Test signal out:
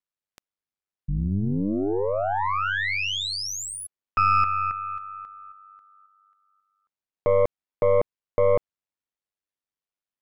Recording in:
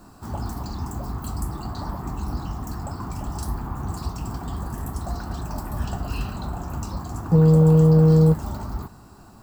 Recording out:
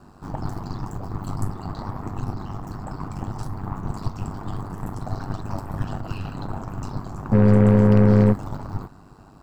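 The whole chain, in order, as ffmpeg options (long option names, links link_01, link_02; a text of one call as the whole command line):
ffmpeg -i in.wav -af "aeval=exprs='val(0)*sin(2*PI*49*n/s)':channel_layout=same,aemphasis=mode=reproduction:type=50kf,aeval=exprs='0.398*(cos(1*acos(clip(val(0)/0.398,-1,1)))-cos(1*PI/2))+0.0316*(cos(8*acos(clip(val(0)/0.398,-1,1)))-cos(8*PI/2))':channel_layout=same,volume=2.5dB" out.wav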